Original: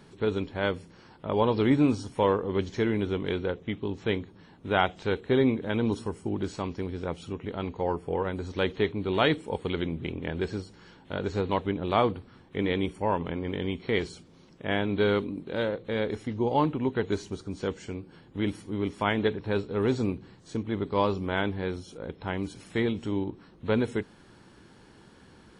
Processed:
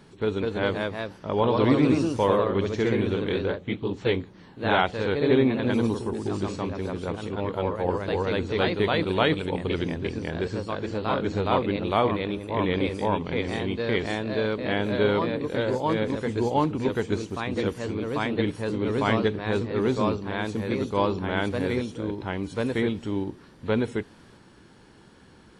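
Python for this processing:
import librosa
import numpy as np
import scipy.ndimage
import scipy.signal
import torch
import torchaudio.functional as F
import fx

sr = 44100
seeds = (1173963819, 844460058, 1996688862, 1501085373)

y = fx.echo_pitch(x, sr, ms=214, semitones=1, count=2, db_per_echo=-3.0)
y = y * librosa.db_to_amplitude(1.0)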